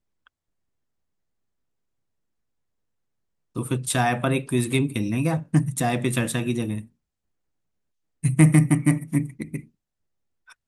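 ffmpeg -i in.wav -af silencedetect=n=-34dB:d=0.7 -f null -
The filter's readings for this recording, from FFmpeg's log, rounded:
silence_start: 0.00
silence_end: 3.56 | silence_duration: 3.56
silence_start: 6.81
silence_end: 8.24 | silence_duration: 1.42
silence_start: 9.60
silence_end: 10.68 | silence_duration: 1.07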